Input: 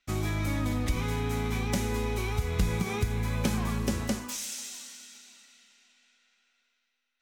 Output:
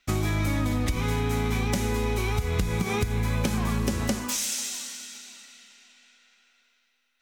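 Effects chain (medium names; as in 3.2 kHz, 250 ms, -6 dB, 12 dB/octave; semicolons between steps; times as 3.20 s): compression, threshold -30 dBFS, peak gain reduction 10 dB; trim +8 dB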